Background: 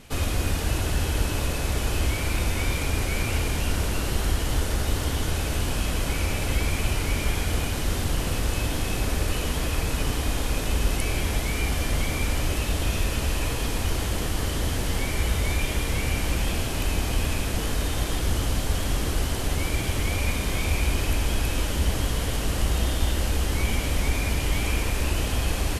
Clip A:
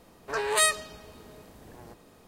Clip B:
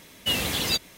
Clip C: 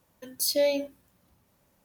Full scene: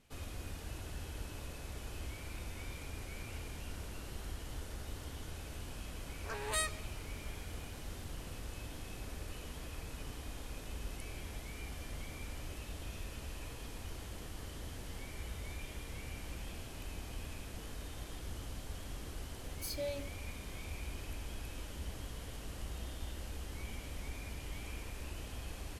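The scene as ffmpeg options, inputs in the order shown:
-filter_complex "[0:a]volume=-19.5dB[a];[1:a]highpass=390,atrim=end=2.27,asetpts=PTS-STARTPTS,volume=-12.5dB,afade=t=in:d=0.004:c=hsin,afade=t=out:st=2.266:d=0.004:c=hsin,adelay=5960[b];[3:a]atrim=end=1.84,asetpts=PTS-STARTPTS,volume=-15.5dB,afade=t=in:d=0.004:c=hsin,afade=t=out:st=1.836:d=0.004:c=hsin,adelay=19220[c];[a][b][c]amix=inputs=3:normalize=0"

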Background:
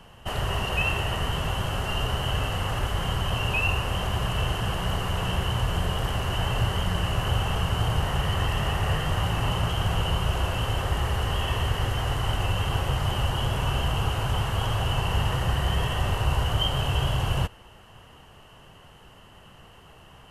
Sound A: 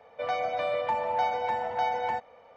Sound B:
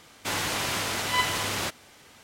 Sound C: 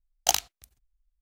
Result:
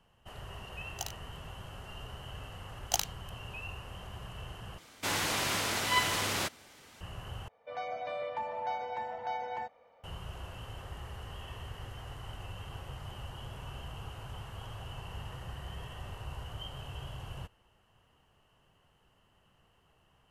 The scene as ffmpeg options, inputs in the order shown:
-filter_complex "[3:a]asplit=2[a][b];[0:a]volume=-18dB[c];[1:a]dynaudnorm=f=160:g=3:m=4.5dB[d];[c]asplit=3[e][f][g];[e]atrim=end=4.784[h];[2:a]atrim=end=2.23,asetpts=PTS-STARTPTS,volume=-3dB[i];[f]atrim=start=7.006:end=7.484[j];[d]atrim=end=2.56,asetpts=PTS-STARTPTS,volume=-13dB[k];[g]atrim=start=10.036[l];[a]atrim=end=1.21,asetpts=PTS-STARTPTS,volume=-17.5dB,afade=t=in:d=0.004:c=hsin,afade=t=out:st=1.206:d=0.004:c=hsin,adelay=720[m];[b]atrim=end=1.21,asetpts=PTS-STARTPTS,volume=-7.5dB,afade=t=in:d=0.004:c=hsin,afade=t=out:st=1.206:d=0.004:c=hsin,adelay=2650[n];[h][i]acrossfade=d=0.004:c1=hsin:c2=hsin[o];[o][j]acrossfade=d=0.004:c1=hsin:c2=hsin[p];[p][k]acrossfade=d=0.004:c1=hsin:c2=hsin[q];[q][l]acrossfade=d=0.004:c1=hsin:c2=hsin[r];[r][m][n]amix=inputs=3:normalize=0"

